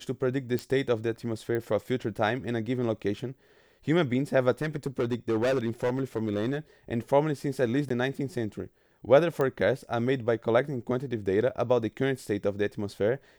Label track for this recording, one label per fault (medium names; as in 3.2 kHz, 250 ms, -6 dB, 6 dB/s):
0.590000	0.590000	pop
1.550000	1.550000	pop -21 dBFS
4.620000	6.580000	clipped -22.5 dBFS
7.890000	7.900000	dropout 14 ms
9.410000	9.410000	pop -17 dBFS